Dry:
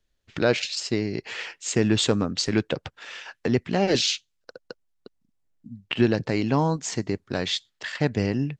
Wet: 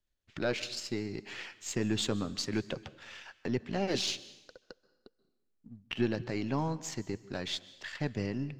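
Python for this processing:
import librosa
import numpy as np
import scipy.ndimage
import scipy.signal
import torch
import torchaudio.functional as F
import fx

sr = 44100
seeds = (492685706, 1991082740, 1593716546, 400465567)

y = np.where(x < 0.0, 10.0 ** (-3.0 / 20.0) * x, x)
y = fx.notch(y, sr, hz=460.0, q=12.0)
y = fx.rev_plate(y, sr, seeds[0], rt60_s=0.95, hf_ratio=0.95, predelay_ms=120, drr_db=18.0)
y = F.gain(torch.from_numpy(y), -8.0).numpy()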